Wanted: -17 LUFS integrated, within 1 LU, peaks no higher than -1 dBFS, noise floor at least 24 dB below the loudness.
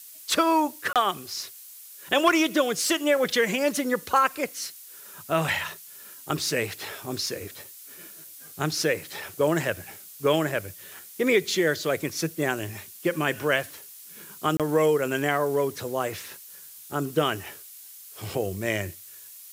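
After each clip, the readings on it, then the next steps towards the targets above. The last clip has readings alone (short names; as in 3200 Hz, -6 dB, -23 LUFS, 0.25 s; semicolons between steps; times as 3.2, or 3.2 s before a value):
dropouts 2; longest dropout 27 ms; noise floor -46 dBFS; noise floor target -50 dBFS; loudness -26.0 LUFS; peak -7.0 dBFS; loudness target -17.0 LUFS
-> interpolate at 0.93/14.57, 27 ms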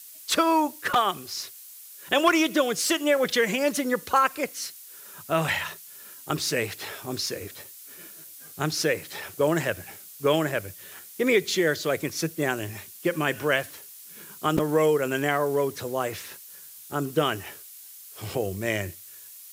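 dropouts 0; noise floor -46 dBFS; noise floor target -50 dBFS
-> noise print and reduce 6 dB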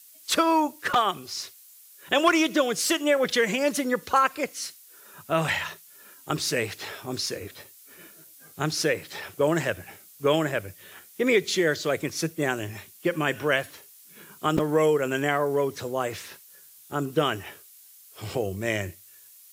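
noise floor -52 dBFS; loudness -26.0 LUFS; peak -7.0 dBFS; loudness target -17.0 LUFS
-> gain +9 dB; limiter -1 dBFS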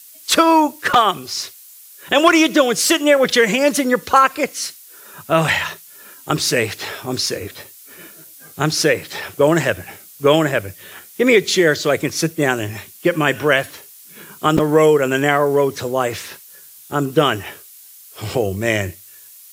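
loudness -17.0 LUFS; peak -1.0 dBFS; noise floor -43 dBFS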